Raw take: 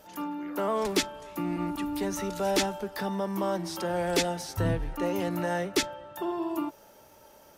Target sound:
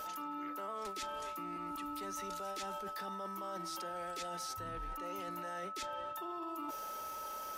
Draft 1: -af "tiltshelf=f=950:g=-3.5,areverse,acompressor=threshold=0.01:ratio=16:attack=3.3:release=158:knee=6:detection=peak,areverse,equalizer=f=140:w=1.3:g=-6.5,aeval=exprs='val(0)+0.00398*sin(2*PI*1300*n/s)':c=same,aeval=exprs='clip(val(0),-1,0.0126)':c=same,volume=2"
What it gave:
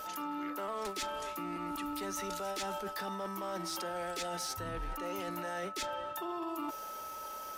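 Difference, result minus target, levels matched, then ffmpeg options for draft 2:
compression: peak gain reduction -6 dB
-af "tiltshelf=f=950:g=-3.5,areverse,acompressor=threshold=0.00473:ratio=16:attack=3.3:release=158:knee=6:detection=peak,areverse,equalizer=f=140:w=1.3:g=-6.5,aeval=exprs='val(0)+0.00398*sin(2*PI*1300*n/s)':c=same,aeval=exprs='clip(val(0),-1,0.0126)':c=same,volume=2"

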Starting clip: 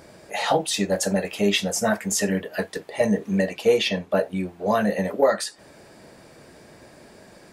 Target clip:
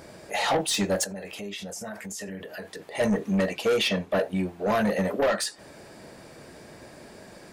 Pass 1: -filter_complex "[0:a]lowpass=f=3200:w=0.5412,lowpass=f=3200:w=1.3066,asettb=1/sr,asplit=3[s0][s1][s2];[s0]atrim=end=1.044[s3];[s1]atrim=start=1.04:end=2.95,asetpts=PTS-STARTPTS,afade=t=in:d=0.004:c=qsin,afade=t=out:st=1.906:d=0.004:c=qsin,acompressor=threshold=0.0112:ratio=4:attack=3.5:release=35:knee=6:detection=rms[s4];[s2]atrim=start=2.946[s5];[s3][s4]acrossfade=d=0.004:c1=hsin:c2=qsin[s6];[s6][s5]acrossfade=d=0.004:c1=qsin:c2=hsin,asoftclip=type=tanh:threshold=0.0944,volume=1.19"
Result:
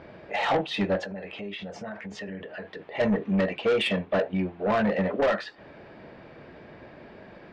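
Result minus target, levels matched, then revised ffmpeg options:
4 kHz band -3.5 dB
-filter_complex "[0:a]asettb=1/sr,asplit=3[s0][s1][s2];[s0]atrim=end=1.044[s3];[s1]atrim=start=1.04:end=2.95,asetpts=PTS-STARTPTS,afade=t=in:d=0.004:c=qsin,afade=t=out:st=1.906:d=0.004:c=qsin,acompressor=threshold=0.0112:ratio=4:attack=3.5:release=35:knee=6:detection=rms[s4];[s2]atrim=start=2.946[s5];[s3][s4]acrossfade=d=0.004:c1=hsin:c2=qsin[s6];[s6][s5]acrossfade=d=0.004:c1=qsin:c2=hsin,asoftclip=type=tanh:threshold=0.0944,volume=1.19"

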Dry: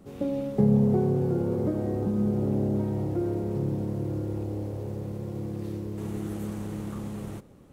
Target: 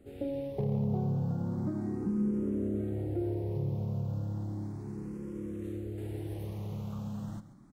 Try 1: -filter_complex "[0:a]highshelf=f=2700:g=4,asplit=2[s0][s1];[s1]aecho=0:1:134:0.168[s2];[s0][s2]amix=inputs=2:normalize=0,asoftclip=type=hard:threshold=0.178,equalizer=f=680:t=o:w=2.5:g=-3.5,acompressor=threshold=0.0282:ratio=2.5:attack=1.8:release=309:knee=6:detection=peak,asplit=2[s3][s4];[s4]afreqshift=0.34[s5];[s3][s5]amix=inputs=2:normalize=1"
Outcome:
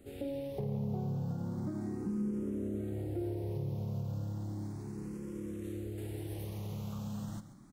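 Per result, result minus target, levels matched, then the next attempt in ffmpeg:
4 kHz band +7.0 dB; compression: peak gain reduction +5 dB
-filter_complex "[0:a]highshelf=f=2700:g=-5,asplit=2[s0][s1];[s1]aecho=0:1:134:0.168[s2];[s0][s2]amix=inputs=2:normalize=0,asoftclip=type=hard:threshold=0.178,equalizer=f=680:t=o:w=2.5:g=-3.5,acompressor=threshold=0.0282:ratio=2.5:attack=1.8:release=309:knee=6:detection=peak,asplit=2[s3][s4];[s4]afreqshift=0.34[s5];[s3][s5]amix=inputs=2:normalize=1"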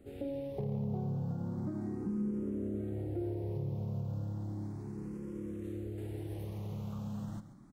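compression: peak gain reduction +5 dB
-filter_complex "[0:a]highshelf=f=2700:g=-5,asplit=2[s0][s1];[s1]aecho=0:1:134:0.168[s2];[s0][s2]amix=inputs=2:normalize=0,asoftclip=type=hard:threshold=0.178,equalizer=f=680:t=o:w=2.5:g=-3.5,acompressor=threshold=0.075:ratio=2.5:attack=1.8:release=309:knee=6:detection=peak,asplit=2[s3][s4];[s4]afreqshift=0.34[s5];[s3][s5]amix=inputs=2:normalize=1"

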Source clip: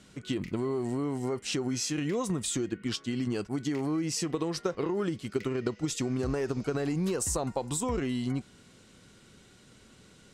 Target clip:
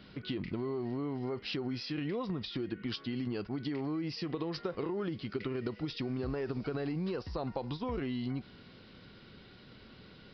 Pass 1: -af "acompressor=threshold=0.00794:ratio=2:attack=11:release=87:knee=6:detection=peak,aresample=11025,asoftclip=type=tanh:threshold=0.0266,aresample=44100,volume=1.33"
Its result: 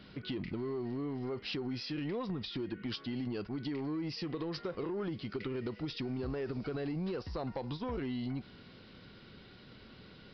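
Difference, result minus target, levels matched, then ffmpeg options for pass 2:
saturation: distortion +18 dB
-af "acompressor=threshold=0.00794:ratio=2:attack=11:release=87:knee=6:detection=peak,aresample=11025,asoftclip=type=tanh:threshold=0.0944,aresample=44100,volume=1.33"

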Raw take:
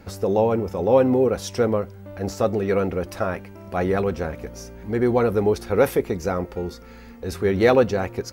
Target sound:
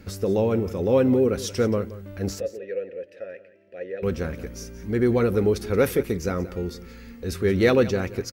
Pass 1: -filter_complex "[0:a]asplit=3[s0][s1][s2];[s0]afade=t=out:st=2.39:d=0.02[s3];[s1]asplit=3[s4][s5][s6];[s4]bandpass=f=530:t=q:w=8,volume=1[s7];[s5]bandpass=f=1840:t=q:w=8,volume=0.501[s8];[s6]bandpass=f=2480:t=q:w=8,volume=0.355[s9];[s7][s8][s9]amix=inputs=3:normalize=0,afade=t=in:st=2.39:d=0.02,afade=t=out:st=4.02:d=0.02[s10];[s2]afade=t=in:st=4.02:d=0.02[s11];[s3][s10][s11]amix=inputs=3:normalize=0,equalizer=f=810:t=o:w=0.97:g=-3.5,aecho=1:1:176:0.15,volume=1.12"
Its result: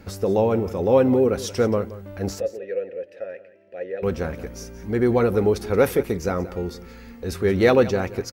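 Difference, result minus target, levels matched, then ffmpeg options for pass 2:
1 kHz band +3.5 dB
-filter_complex "[0:a]asplit=3[s0][s1][s2];[s0]afade=t=out:st=2.39:d=0.02[s3];[s1]asplit=3[s4][s5][s6];[s4]bandpass=f=530:t=q:w=8,volume=1[s7];[s5]bandpass=f=1840:t=q:w=8,volume=0.501[s8];[s6]bandpass=f=2480:t=q:w=8,volume=0.355[s9];[s7][s8][s9]amix=inputs=3:normalize=0,afade=t=in:st=2.39:d=0.02,afade=t=out:st=4.02:d=0.02[s10];[s2]afade=t=in:st=4.02:d=0.02[s11];[s3][s10][s11]amix=inputs=3:normalize=0,equalizer=f=810:t=o:w=0.97:g=-11.5,aecho=1:1:176:0.15,volume=1.12"

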